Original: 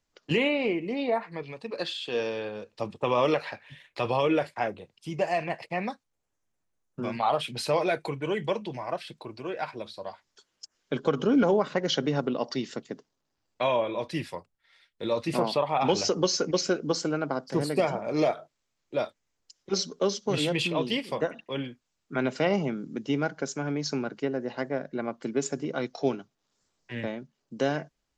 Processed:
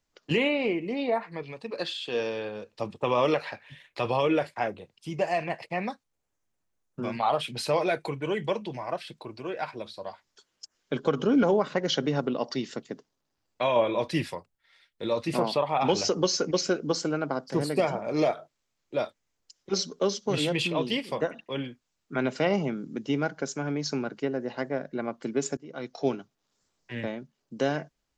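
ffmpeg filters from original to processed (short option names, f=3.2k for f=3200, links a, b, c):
-filter_complex "[0:a]asplit=4[a][b][c][d];[a]atrim=end=13.762[e];[b]atrim=start=13.758:end=14.342,asetpts=PTS-STARTPTS,volume=4dB[f];[c]atrim=start=14.338:end=25.57,asetpts=PTS-STARTPTS,afade=t=out:st=11.228:d=0.004:c=hsin:silence=0.0707946[g];[d]atrim=start=25.57,asetpts=PTS-STARTPTS,afade=t=in:d=0.51:silence=0.0707946[h];[e][f]acrossfade=d=0.004:c1=hsin:c2=hsin[i];[g][h]concat=n=2:v=0:a=1[j];[i][j]acrossfade=d=0.004:c1=hsin:c2=hsin"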